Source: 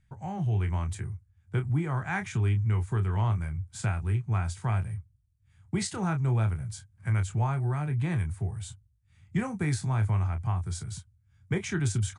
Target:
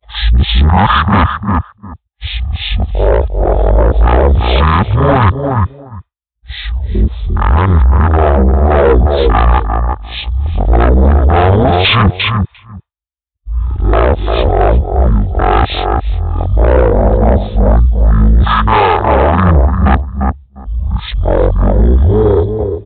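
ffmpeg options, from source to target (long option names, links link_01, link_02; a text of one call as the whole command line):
ffmpeg -i in.wav -filter_complex "[0:a]areverse,highpass=97,afwtdn=0.01,aemphasis=mode=production:type=bsi,asplit=2[link_01][link_02];[link_02]adelay=186,lowpass=frequency=2100:poles=1,volume=-8.5dB,asplit=2[link_03][link_04];[link_04]adelay=186,lowpass=frequency=2100:poles=1,volume=0.16[link_05];[link_01][link_03][link_05]amix=inputs=3:normalize=0,asetrate=23505,aresample=44100,aresample=8000,asoftclip=type=tanh:threshold=-33dB,aresample=44100,agate=range=-33dB:threshold=-55dB:ratio=3:detection=peak,equalizer=frequency=180:width=0.56:gain=-5,alimiter=level_in=34.5dB:limit=-1dB:release=50:level=0:latency=1,volume=-1dB" out.wav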